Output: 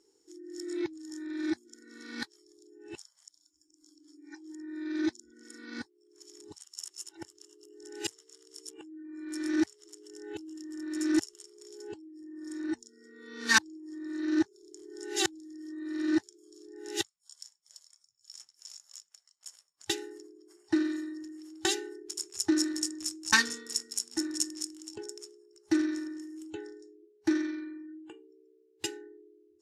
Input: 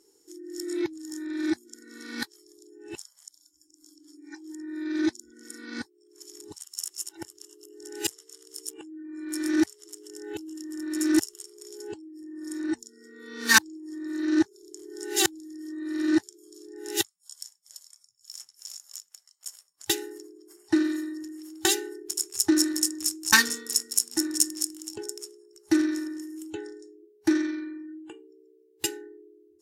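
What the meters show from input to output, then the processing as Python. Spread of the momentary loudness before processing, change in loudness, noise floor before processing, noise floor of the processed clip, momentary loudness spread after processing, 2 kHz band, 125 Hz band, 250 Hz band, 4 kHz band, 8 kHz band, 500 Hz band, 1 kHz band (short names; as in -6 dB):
20 LU, -5.5 dB, -64 dBFS, -70 dBFS, 21 LU, -4.5 dB, -4.5 dB, -4.5 dB, -5.0 dB, -8.0 dB, -4.5 dB, -4.5 dB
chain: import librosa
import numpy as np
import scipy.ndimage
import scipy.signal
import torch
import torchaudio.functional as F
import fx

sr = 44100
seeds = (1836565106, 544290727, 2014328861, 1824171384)

y = scipy.signal.sosfilt(scipy.signal.butter(2, 7200.0, 'lowpass', fs=sr, output='sos'), x)
y = F.gain(torch.from_numpy(y), -4.5).numpy()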